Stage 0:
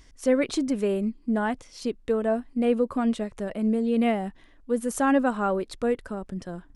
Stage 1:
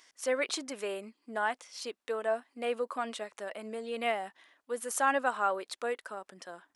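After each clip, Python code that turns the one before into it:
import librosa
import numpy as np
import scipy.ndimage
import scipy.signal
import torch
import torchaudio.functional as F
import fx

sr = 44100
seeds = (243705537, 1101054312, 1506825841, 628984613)

y = scipy.signal.sosfilt(scipy.signal.butter(2, 760.0, 'highpass', fs=sr, output='sos'), x)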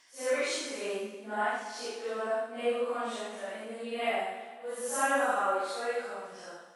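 y = fx.phase_scramble(x, sr, seeds[0], window_ms=200)
y = y + 10.0 ** (-6.0 / 20.0) * np.pad(y, (int(80 * sr / 1000.0), 0))[:len(y)]
y = fx.rev_plate(y, sr, seeds[1], rt60_s=1.5, hf_ratio=0.9, predelay_ms=115, drr_db=10.5)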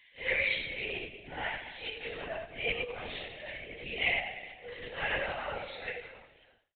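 y = fx.fade_out_tail(x, sr, length_s=1.15)
y = fx.lpc_vocoder(y, sr, seeds[2], excitation='whisper', order=16)
y = fx.high_shelf_res(y, sr, hz=1700.0, db=8.5, q=3.0)
y = y * 10.0 ** (-6.5 / 20.0)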